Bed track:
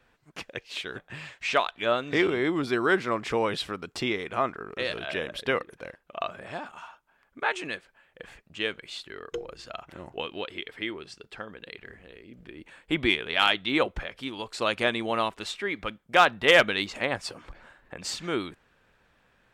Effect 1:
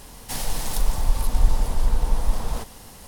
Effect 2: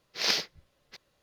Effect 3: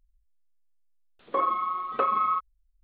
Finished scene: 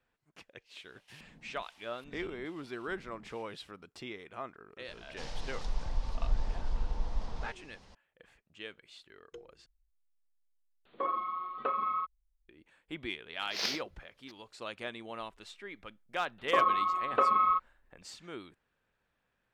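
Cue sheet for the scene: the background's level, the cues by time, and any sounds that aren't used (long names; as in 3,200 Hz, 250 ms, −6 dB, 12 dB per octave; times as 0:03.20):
bed track −15 dB
0:00.79: mix in 1 −15 dB + auto-filter band-pass square 1.2 Hz 210–2,700 Hz
0:04.88: mix in 1 −12.5 dB + low-pass filter 5,600 Hz 24 dB per octave
0:09.66: overwrite with 3 −7.5 dB
0:13.35: mix in 2 −7 dB
0:15.19: mix in 3 −1 dB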